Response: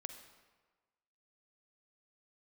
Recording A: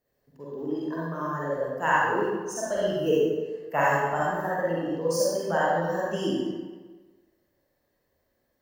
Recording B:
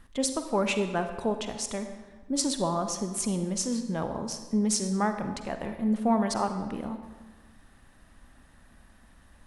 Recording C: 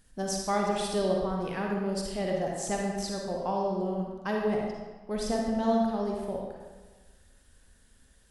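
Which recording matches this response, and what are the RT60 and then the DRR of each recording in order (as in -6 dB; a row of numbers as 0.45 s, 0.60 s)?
B; 1.4 s, 1.4 s, 1.4 s; -8.0 dB, 7.0 dB, -1.0 dB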